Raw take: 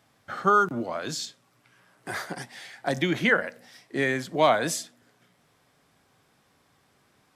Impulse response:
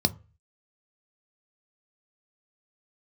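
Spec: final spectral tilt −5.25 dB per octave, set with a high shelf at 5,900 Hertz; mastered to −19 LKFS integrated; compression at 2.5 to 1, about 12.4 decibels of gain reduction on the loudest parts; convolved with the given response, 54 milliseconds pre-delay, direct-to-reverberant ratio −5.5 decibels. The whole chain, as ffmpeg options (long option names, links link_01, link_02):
-filter_complex "[0:a]highshelf=frequency=5900:gain=-6,acompressor=threshold=-35dB:ratio=2.5,asplit=2[link_01][link_02];[1:a]atrim=start_sample=2205,adelay=54[link_03];[link_02][link_03]afir=irnorm=-1:irlink=0,volume=-4dB[link_04];[link_01][link_04]amix=inputs=2:normalize=0,volume=7dB"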